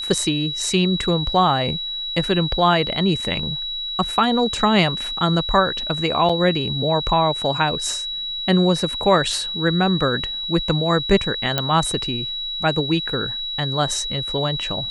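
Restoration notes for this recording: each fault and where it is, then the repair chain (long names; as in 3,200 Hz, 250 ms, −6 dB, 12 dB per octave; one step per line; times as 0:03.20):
whistle 3,900 Hz −25 dBFS
0:06.29: drop-out 5 ms
0:11.58: click −5 dBFS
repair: click removal
notch filter 3,900 Hz, Q 30
repair the gap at 0:06.29, 5 ms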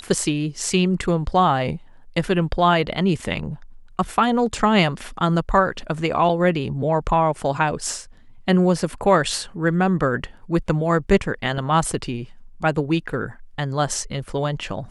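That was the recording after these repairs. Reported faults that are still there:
none of them is left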